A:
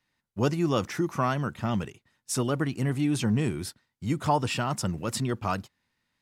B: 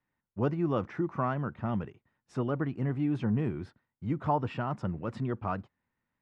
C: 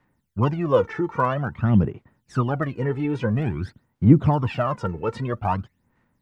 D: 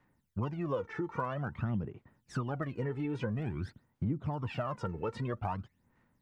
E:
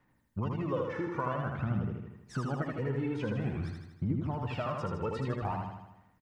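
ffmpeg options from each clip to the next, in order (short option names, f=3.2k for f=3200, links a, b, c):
-af "lowpass=1.6k,volume=-3.5dB"
-af "aphaser=in_gain=1:out_gain=1:delay=2.3:decay=0.74:speed=0.5:type=sinusoidal,volume=7.5dB"
-af "acompressor=threshold=-28dB:ratio=5,volume=-4dB"
-af "aecho=1:1:79|158|237|316|395|474|553|632:0.668|0.374|0.21|0.117|0.0657|0.0368|0.0206|0.0115"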